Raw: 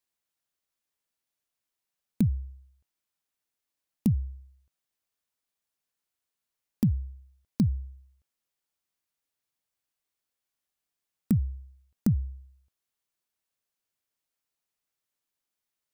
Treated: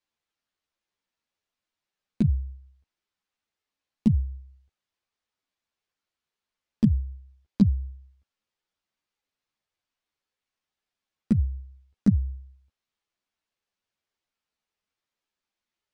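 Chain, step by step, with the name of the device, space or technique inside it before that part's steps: string-machine ensemble chorus (three-phase chorus; low-pass 4.8 kHz 12 dB/octave); trim +6 dB

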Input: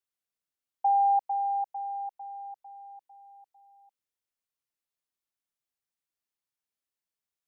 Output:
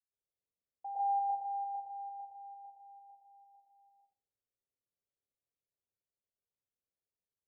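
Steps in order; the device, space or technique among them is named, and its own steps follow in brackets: next room (low-pass 620 Hz 24 dB/octave; reverberation RT60 0.40 s, pre-delay 103 ms, DRR -10 dB); trim -9 dB

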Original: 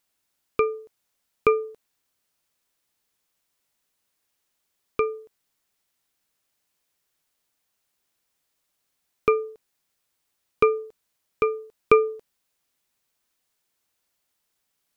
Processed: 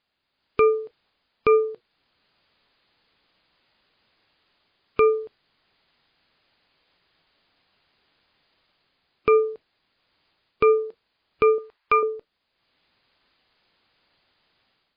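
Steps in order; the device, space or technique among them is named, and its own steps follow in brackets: 11.58–12.03 s: graphic EQ 125/250/500/1000/2000 Hz -11/-12/-5/+7/+5 dB; low-bitrate web radio (level rider gain up to 10.5 dB; peak limiter -12.5 dBFS, peak gain reduction 11 dB; trim +4 dB; MP3 24 kbps 11.025 kHz)

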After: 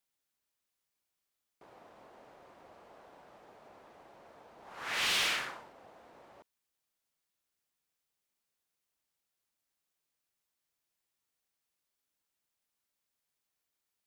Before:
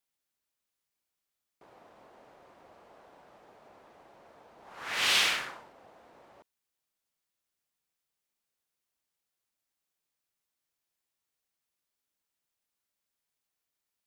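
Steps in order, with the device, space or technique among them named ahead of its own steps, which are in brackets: saturation between pre-emphasis and de-emphasis (treble shelf 6.4 kHz +10 dB; saturation -24 dBFS, distortion -10 dB; treble shelf 6.4 kHz -10 dB)

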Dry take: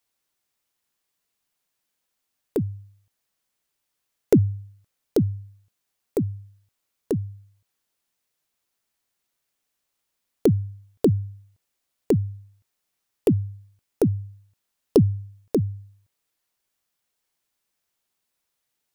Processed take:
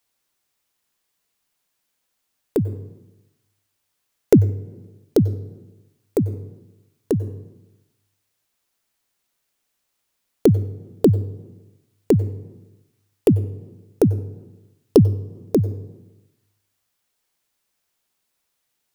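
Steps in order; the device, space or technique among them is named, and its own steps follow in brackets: compressed reverb return (on a send at -13.5 dB: reverberation RT60 0.95 s, pre-delay 89 ms + compression 6:1, threshold -22 dBFS, peak gain reduction 9 dB); on the sum: trim +4 dB

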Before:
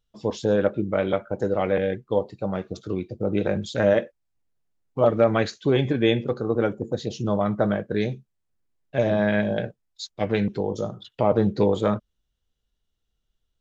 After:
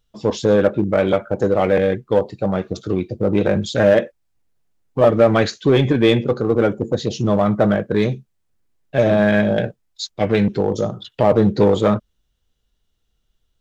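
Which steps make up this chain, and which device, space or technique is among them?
parallel distortion (in parallel at -4 dB: hard clipper -21 dBFS, distortion -7 dB); on the sum: trim +3.5 dB

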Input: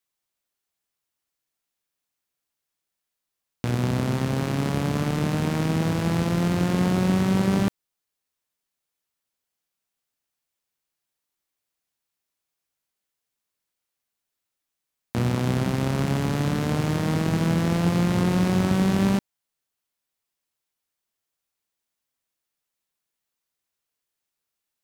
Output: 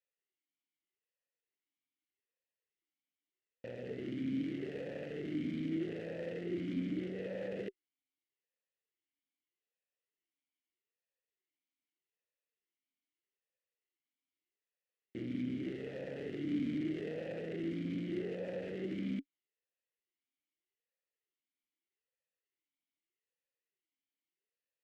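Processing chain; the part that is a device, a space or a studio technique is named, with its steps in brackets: talk box (valve stage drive 28 dB, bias 0.7; talking filter e-i 0.81 Hz); trim +6.5 dB

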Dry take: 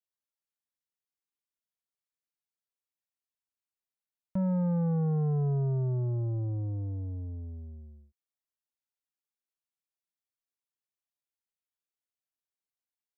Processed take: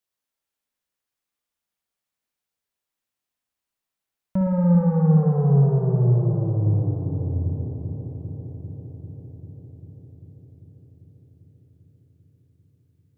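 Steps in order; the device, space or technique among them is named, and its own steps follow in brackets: dub delay into a spring reverb (filtered feedback delay 395 ms, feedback 76%, low-pass 1.4 kHz, level -9 dB; spring tank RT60 2 s, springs 57 ms, chirp 65 ms, DRR 2 dB); trim +7.5 dB

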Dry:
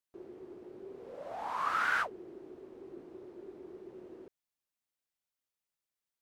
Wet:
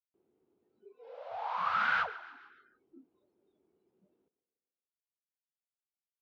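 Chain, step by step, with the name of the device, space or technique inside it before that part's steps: bass shelf 430 Hz +3.5 dB; 0.86–1.31 s: high-pass 270 Hz 12 dB/octave; frequency-shifting delay pedal into a guitar cabinet (frequency-shifting echo 144 ms, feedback 51%, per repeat +40 Hz, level -20.5 dB; cabinet simulation 82–4300 Hz, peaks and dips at 120 Hz -6 dB, 360 Hz -8 dB, 580 Hz -7 dB, 1.1 kHz -3 dB, 1.8 kHz -6 dB); feedback delay 145 ms, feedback 54%, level -18.5 dB; spectral noise reduction 26 dB; trim +3 dB

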